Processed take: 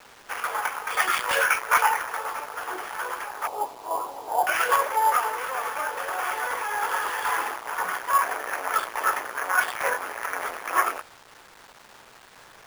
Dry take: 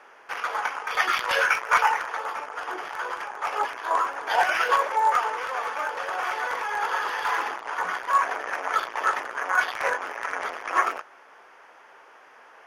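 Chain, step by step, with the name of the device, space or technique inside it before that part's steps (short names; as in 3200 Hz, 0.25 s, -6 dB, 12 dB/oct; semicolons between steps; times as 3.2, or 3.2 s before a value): 3.47–4.47 elliptic band-pass 110–890 Hz, stop band 50 dB; early 8-bit sampler (sample-rate reducer 12000 Hz, jitter 0%; bit-crush 8-bit)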